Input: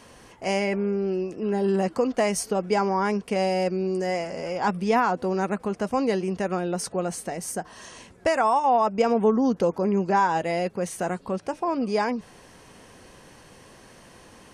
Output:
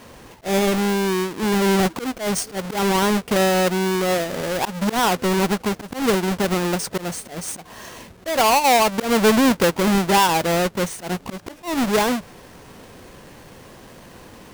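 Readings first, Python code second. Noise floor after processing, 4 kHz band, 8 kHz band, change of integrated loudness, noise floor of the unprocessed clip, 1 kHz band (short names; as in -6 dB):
-45 dBFS, +13.5 dB, +9.5 dB, +5.0 dB, -51 dBFS, +3.5 dB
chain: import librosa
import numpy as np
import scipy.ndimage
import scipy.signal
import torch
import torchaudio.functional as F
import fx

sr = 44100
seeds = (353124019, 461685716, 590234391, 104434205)

y = fx.halfwave_hold(x, sr)
y = fx.auto_swell(y, sr, attack_ms=142.0)
y = y * 10.0 ** (1.5 / 20.0)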